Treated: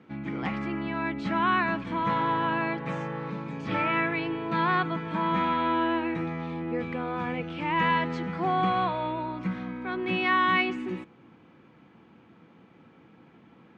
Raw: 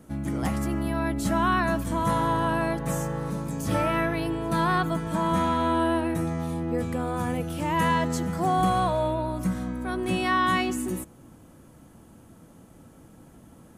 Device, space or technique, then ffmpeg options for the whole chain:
kitchen radio: -af "highpass=190,equalizer=frequency=270:width_type=q:width=4:gain=-4,equalizer=frequency=610:width_type=q:width=4:gain=-9,equalizer=frequency=2300:width_type=q:width=4:gain=8,lowpass=frequency=3700:width=0.5412,lowpass=frequency=3700:width=1.3066"

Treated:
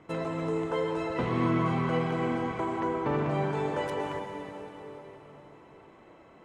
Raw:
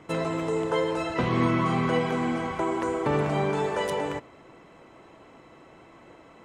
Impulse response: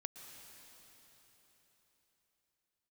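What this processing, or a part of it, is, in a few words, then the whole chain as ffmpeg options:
swimming-pool hall: -filter_complex "[1:a]atrim=start_sample=2205[link_01];[0:a][link_01]afir=irnorm=-1:irlink=0,highshelf=frequency=4000:gain=-8,asettb=1/sr,asplit=3[link_02][link_03][link_04];[link_02]atrim=end=2.804[link_05];[link_03]atrim=start=2.8:end=3.31,asetpts=PTS-STARTPTS,afade=type=in:duration=0.004:curve=qsin,afade=type=out:start_time=0.506:duration=0.004:curve=qsin,lowpass=5700[link_06];[link_04]atrim=start=3.306[link_07];[link_05][link_06]acrossfade=duration=0.004:curve1=hsin:curve2=qsin[link_08];[link_08][link_07]acrossfade=duration=0.004:curve1=qsin:curve2=hsin"

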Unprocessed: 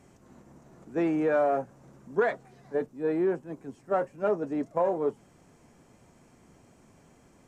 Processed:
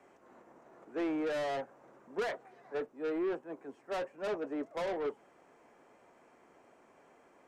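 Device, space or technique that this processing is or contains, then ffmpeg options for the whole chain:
one-band saturation: -filter_complex "[0:a]acrossover=split=340 2700:gain=0.0708 1 0.2[link_01][link_02][link_03];[link_01][link_02][link_03]amix=inputs=3:normalize=0,acrossover=split=290|2700[link_04][link_05][link_06];[link_05]asoftclip=type=tanh:threshold=-36.5dB[link_07];[link_04][link_07][link_06]amix=inputs=3:normalize=0,volume=1.5dB"

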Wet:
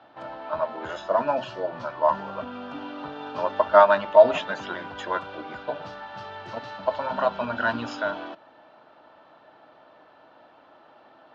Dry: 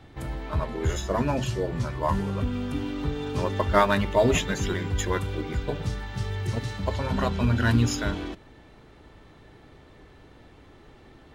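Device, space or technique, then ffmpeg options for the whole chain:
phone earpiece: -af "highpass=370,equalizer=frequency=410:width_type=q:width=4:gain=-10,equalizer=frequency=630:width_type=q:width=4:gain=10,equalizer=frequency=920:width_type=q:width=4:gain=6,equalizer=frequency=1400:width_type=q:width=4:gain=6,equalizer=frequency=2100:width_type=q:width=4:gain=-9,equalizer=frequency=3700:width_type=q:width=4:gain=-4,lowpass=frequency=4200:width=0.5412,lowpass=frequency=4200:width=1.3066"

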